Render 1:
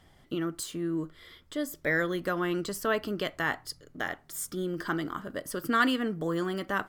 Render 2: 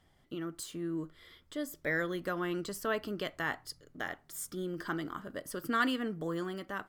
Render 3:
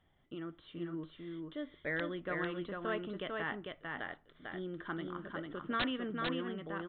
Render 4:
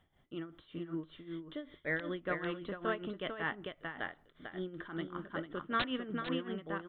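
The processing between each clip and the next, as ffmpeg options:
-af "dynaudnorm=f=150:g=7:m=1.5,volume=0.376"
-af "aresample=8000,aeval=exprs='(mod(10.6*val(0)+1,2)-1)/10.6':c=same,aresample=44100,aecho=1:1:448:0.668,volume=0.596"
-af "tremolo=f=5.2:d=0.75,volume=1.5"

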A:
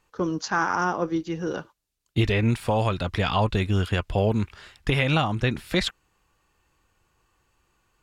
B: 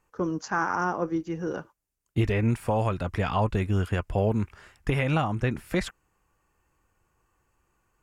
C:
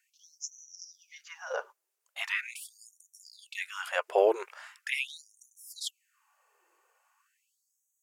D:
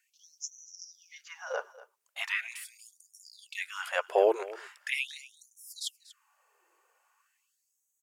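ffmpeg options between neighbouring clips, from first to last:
-af "equalizer=f=3800:w=1.5:g=-12,volume=0.794"
-af "afftfilt=real='re*gte(b*sr/1024,330*pow(5800/330,0.5+0.5*sin(2*PI*0.41*pts/sr)))':imag='im*gte(b*sr/1024,330*pow(5800/330,0.5+0.5*sin(2*PI*0.41*pts/sr)))':win_size=1024:overlap=0.75,volume=1.58"
-af "aecho=1:1:239:0.119"

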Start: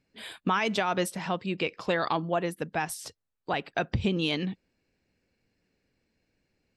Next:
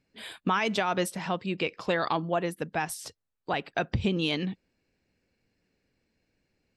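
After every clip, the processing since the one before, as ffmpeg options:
-af anull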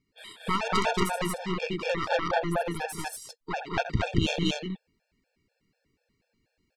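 -af "aecho=1:1:81.63|195.3|230.3:0.316|0.398|1,aeval=exprs='0.355*(cos(1*acos(clip(val(0)/0.355,-1,1)))-cos(1*PI/2))+0.158*(cos(4*acos(clip(val(0)/0.355,-1,1)))-cos(4*PI/2))+0.0316*(cos(6*acos(clip(val(0)/0.355,-1,1)))-cos(6*PI/2))':c=same,afftfilt=real='re*gt(sin(2*PI*4.1*pts/sr)*(1-2*mod(floor(b*sr/1024/460),2)),0)':imag='im*gt(sin(2*PI*4.1*pts/sr)*(1-2*mod(floor(b*sr/1024/460),2)),0)':win_size=1024:overlap=0.75"

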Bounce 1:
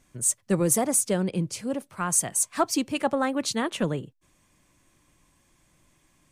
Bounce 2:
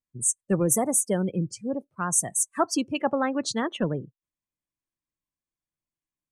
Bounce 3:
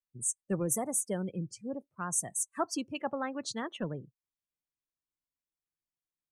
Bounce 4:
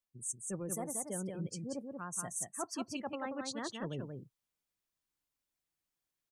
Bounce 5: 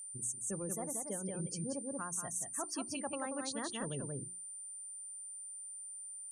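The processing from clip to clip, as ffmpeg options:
-af "afftdn=nr=33:nf=-34"
-af "adynamicequalizer=threshold=0.0158:dfrequency=340:dqfactor=0.77:tfrequency=340:tqfactor=0.77:attack=5:release=100:ratio=0.375:range=2:mode=cutabove:tftype=bell,volume=0.398"
-af "areverse,acompressor=threshold=0.00708:ratio=4,areverse,aecho=1:1:183:0.596,volume=1.58"
-af "acompressor=threshold=0.00708:ratio=6,aeval=exprs='val(0)+0.00282*sin(2*PI*9100*n/s)':c=same,bandreject=f=60:t=h:w=6,bandreject=f=120:t=h:w=6,bandreject=f=180:t=h:w=6,bandreject=f=240:t=h:w=6,bandreject=f=300:t=h:w=6,bandreject=f=360:t=h:w=6,volume=2.11"

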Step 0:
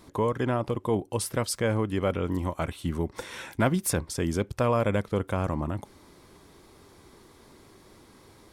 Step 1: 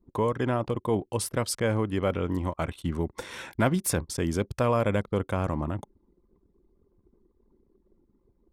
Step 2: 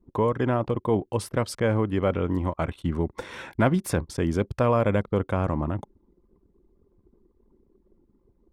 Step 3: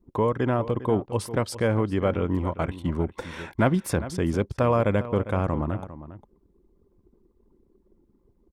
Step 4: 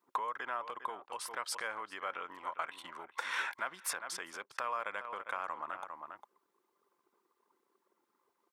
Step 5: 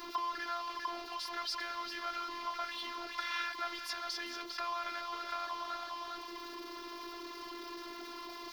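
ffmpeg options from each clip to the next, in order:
-af "anlmdn=0.0631"
-af "highshelf=f=4100:g=-11.5,volume=1.41"
-filter_complex "[0:a]asplit=2[s0][s1];[s1]adelay=402.3,volume=0.2,highshelf=f=4000:g=-9.05[s2];[s0][s2]amix=inputs=2:normalize=0"
-af "alimiter=limit=0.126:level=0:latency=1:release=248,acompressor=threshold=0.0178:ratio=3,highpass=f=1200:t=q:w=1.6,volume=1.58"
-af "aeval=exprs='val(0)+0.5*0.0178*sgn(val(0))':c=same,highshelf=f=6300:t=q:w=3:g=-9.5,afftfilt=real='hypot(re,im)*cos(PI*b)':imag='0':win_size=512:overlap=0.75,volume=0.841"

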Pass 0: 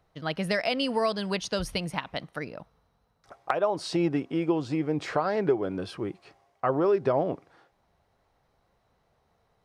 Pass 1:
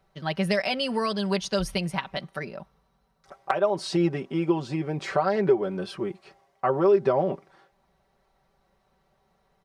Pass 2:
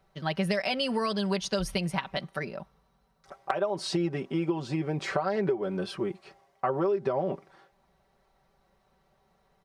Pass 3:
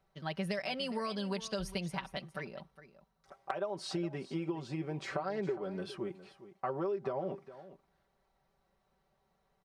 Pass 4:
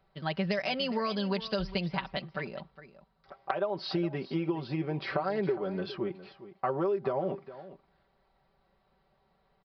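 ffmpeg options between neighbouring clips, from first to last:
-af "aecho=1:1:5.2:0.74"
-af "acompressor=threshold=0.0631:ratio=6"
-af "aecho=1:1:411:0.168,volume=0.398"
-af "aresample=11025,aresample=44100,volume=1.88"

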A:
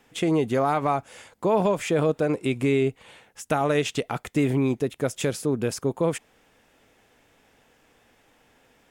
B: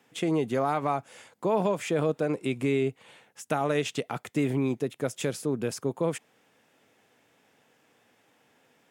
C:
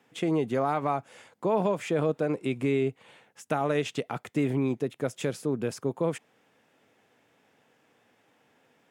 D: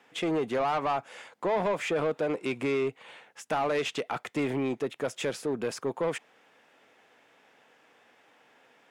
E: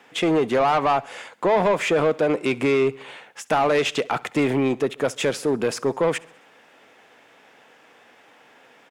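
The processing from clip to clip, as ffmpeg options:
-af "highpass=f=110:w=0.5412,highpass=f=110:w=1.3066,volume=0.631"
-af "highshelf=f=4100:g=-6"
-filter_complex "[0:a]asplit=2[s0][s1];[s1]highpass=f=720:p=1,volume=8.91,asoftclip=type=tanh:threshold=0.237[s2];[s0][s2]amix=inputs=2:normalize=0,lowpass=f=4000:p=1,volume=0.501,volume=0.501"
-af "aecho=1:1:67|134|201|268:0.0708|0.0389|0.0214|0.0118,volume=2.66"

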